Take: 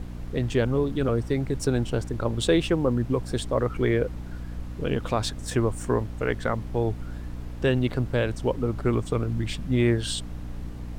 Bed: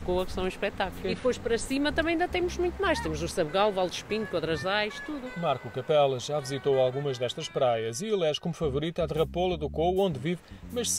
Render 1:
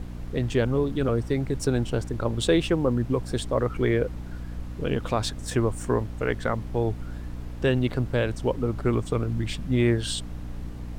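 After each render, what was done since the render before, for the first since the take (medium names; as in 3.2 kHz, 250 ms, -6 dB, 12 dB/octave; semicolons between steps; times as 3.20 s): no audible change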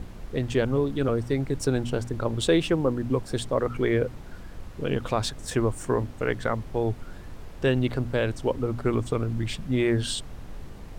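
de-hum 60 Hz, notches 5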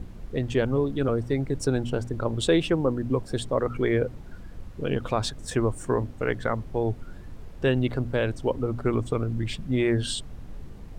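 noise reduction 6 dB, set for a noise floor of -42 dBFS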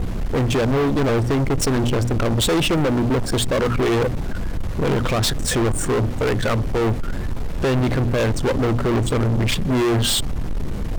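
peak limiter -15.5 dBFS, peak gain reduction 5.5 dB; waveshaping leveller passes 5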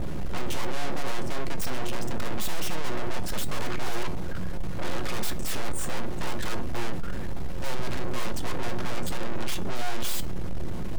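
full-wave rectifier; feedback comb 180 Hz, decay 0.2 s, harmonics all, mix 60%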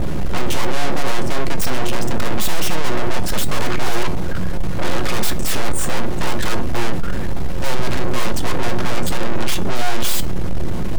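trim +10 dB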